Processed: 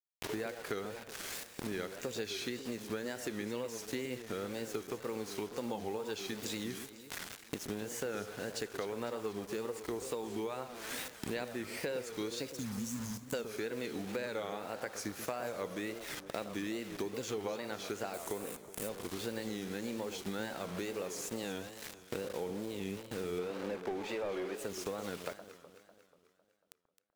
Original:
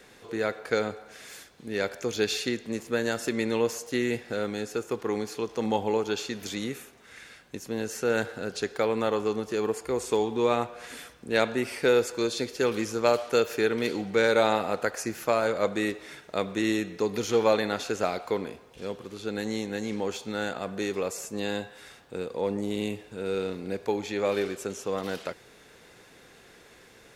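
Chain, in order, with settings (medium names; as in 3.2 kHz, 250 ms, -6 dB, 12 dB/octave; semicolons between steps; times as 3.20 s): 12.53–13.33 s: spectral selection erased 300–5000 Hz; bit crusher 7-bit; 18.14–18.89 s: resonant high shelf 6.2 kHz +9.5 dB, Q 1.5; 23.38–24.55 s: overdrive pedal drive 19 dB, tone 1.2 kHz, clips at -13.5 dBFS; compression 8:1, threshold -49 dBFS, peak gain reduction 30 dB; on a send: echo whose repeats swap between lows and highs 124 ms, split 1.3 kHz, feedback 73%, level -10 dB; on the sum: wow and flutter 150 cents; trim +11.5 dB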